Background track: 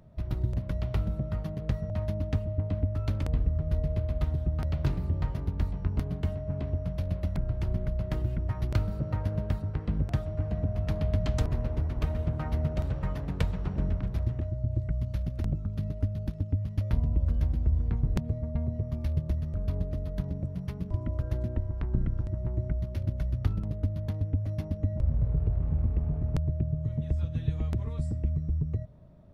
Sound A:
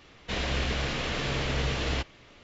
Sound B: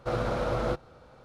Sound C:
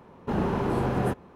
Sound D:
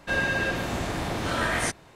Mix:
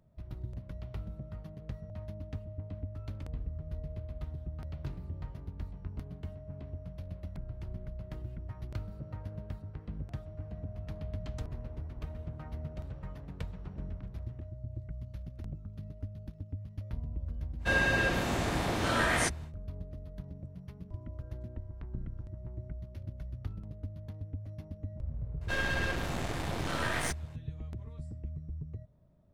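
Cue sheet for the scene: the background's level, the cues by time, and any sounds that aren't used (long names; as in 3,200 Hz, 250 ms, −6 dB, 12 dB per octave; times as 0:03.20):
background track −11.5 dB
0:17.58: mix in D −2 dB, fades 0.10 s
0:25.41: mix in D −3.5 dB + gain on one half-wave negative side −12 dB
not used: A, B, C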